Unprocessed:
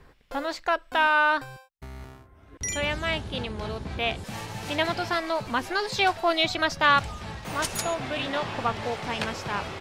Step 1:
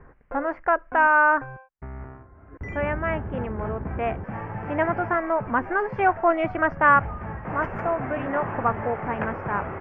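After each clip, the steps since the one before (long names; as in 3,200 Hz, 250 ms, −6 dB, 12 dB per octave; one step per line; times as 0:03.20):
inverse Chebyshev low-pass filter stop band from 3,600 Hz, stop band 40 dB
level +4 dB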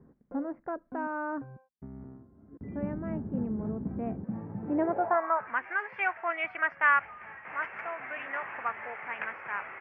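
band-pass filter sweep 220 Hz → 2,300 Hz, 0:04.60–0:05.58
level +3 dB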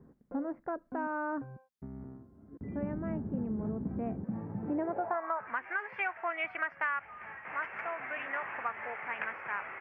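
downward compressor 5 to 1, threshold −30 dBFS, peak gain reduction 11 dB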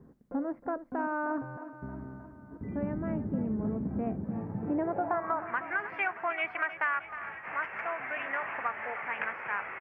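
repeating echo 312 ms, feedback 59%, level −13 dB
level +2.5 dB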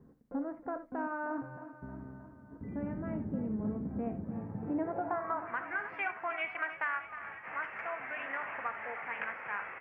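convolution reverb, pre-delay 3 ms, DRR 8.5 dB
level −4.5 dB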